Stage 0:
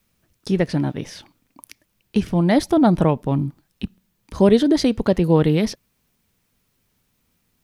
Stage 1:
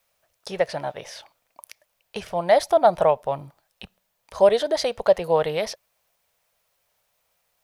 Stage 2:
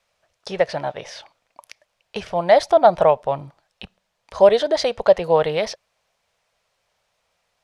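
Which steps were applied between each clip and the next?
resonant low shelf 410 Hz -13.5 dB, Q 3; gain -1.5 dB
LPF 6300 Hz 12 dB/oct; gain +3.5 dB

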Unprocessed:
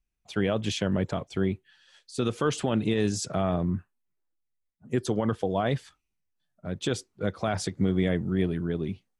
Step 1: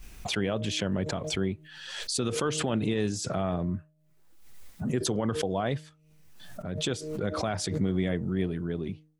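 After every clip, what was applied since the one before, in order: de-hum 154.4 Hz, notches 4; backwards sustainer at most 44 dB/s; gain -3 dB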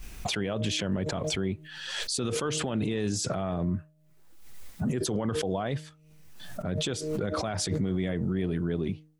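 limiter -24.5 dBFS, peak gain reduction 9 dB; gain +4 dB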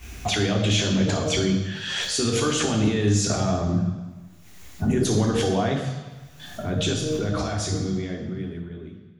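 ending faded out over 2.73 s; reverb RT60 1.2 s, pre-delay 3 ms, DRR 1.5 dB

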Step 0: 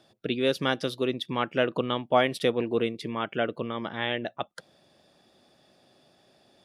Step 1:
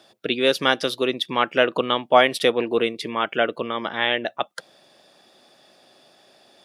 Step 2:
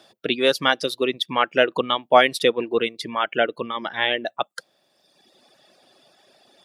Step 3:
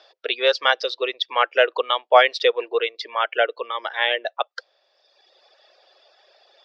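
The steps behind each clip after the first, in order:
HPF 510 Hz 6 dB/oct; gain +9 dB
reverb removal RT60 1.4 s; gain +1 dB
elliptic band-pass 470–5200 Hz, stop band 40 dB; gain +1.5 dB

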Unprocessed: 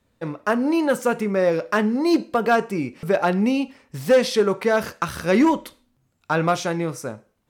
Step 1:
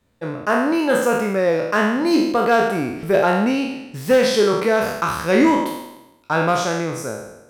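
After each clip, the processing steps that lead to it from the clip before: spectral trails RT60 0.94 s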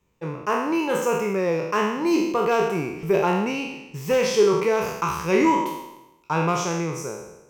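ripple EQ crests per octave 0.75, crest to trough 10 dB; gain -5 dB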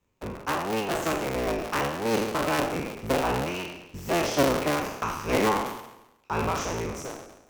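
cycle switcher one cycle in 3, inverted; gain -5 dB

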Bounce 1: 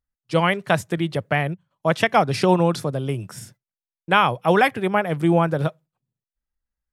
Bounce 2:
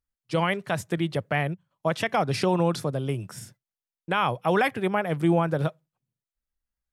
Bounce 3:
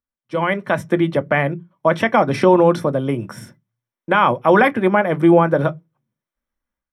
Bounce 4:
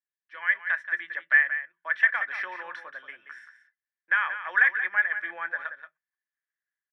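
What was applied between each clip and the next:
limiter -9 dBFS, peak gain reduction 6.5 dB; gain -3 dB
AGC gain up to 11 dB; reverb RT60 0.15 s, pre-delay 3 ms, DRR 9.5 dB; gain -11 dB
ladder band-pass 1800 Hz, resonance 85%; echo 0.179 s -10.5 dB

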